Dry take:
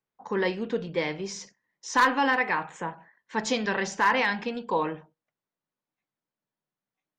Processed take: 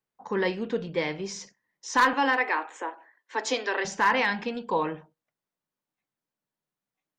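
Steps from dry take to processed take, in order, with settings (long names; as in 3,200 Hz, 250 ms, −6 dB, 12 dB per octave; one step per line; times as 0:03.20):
0:02.13–0:03.85: Butterworth high-pass 260 Hz 72 dB per octave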